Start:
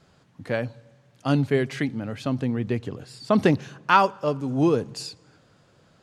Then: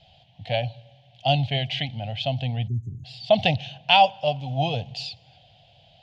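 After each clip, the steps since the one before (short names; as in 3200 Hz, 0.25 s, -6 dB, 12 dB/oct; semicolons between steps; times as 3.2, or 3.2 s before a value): spectral delete 2.68–3.05, 430–6100 Hz; EQ curve 120 Hz 0 dB, 380 Hz -26 dB, 730 Hz +9 dB, 1200 Hz -28 dB, 3100 Hz +12 dB, 9100 Hz -25 dB; gain +4.5 dB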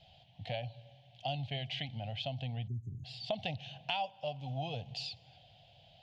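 compressor 3:1, threshold -32 dBFS, peak gain reduction 15.5 dB; gain -5.5 dB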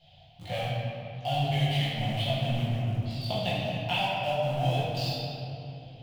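in parallel at -5 dB: sample gate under -39 dBFS; on the sum: chorus voices 2, 0.34 Hz, delay 20 ms, depth 3.4 ms; shoebox room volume 120 m³, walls hard, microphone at 0.89 m; gain +2 dB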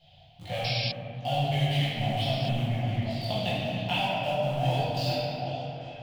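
painted sound noise, 0.64–0.92, 2100–5600 Hz -32 dBFS; delay with a stepping band-pass 0.393 s, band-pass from 260 Hz, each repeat 1.4 oct, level -1.5 dB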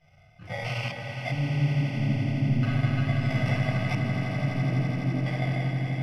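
FFT order left unsorted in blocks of 32 samples; LFO low-pass square 0.38 Hz 280–2500 Hz; swelling echo 84 ms, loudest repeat 8, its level -12 dB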